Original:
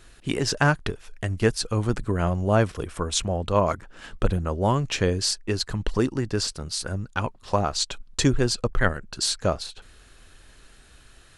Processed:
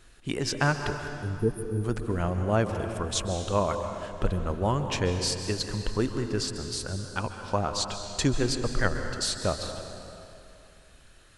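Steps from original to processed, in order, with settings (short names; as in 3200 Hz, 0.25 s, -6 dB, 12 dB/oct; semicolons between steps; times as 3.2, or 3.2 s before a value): spectral repair 1.16–1.82, 500–9000 Hz before; on a send: reverb RT60 2.7 s, pre-delay 0.123 s, DRR 6 dB; on the sum: gain -4.5 dB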